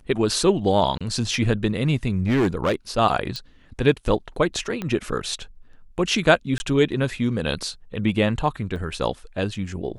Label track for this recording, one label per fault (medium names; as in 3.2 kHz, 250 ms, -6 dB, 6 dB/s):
0.980000	1.010000	dropout 26 ms
2.260000	2.740000	clipped -16 dBFS
3.360000	3.360000	pop -17 dBFS
4.820000	4.820000	pop -15 dBFS
6.580000	6.600000	dropout 20 ms
8.760000	8.760000	dropout 2.1 ms